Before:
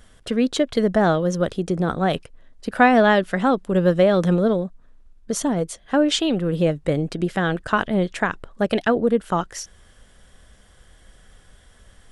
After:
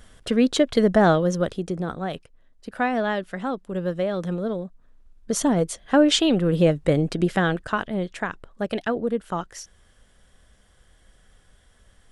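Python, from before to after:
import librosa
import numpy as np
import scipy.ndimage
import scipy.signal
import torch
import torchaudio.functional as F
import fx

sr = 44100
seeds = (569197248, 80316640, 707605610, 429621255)

y = fx.gain(x, sr, db=fx.line((1.13, 1.0), (2.11, -9.0), (4.37, -9.0), (5.48, 1.5), (7.36, 1.5), (7.83, -6.0)))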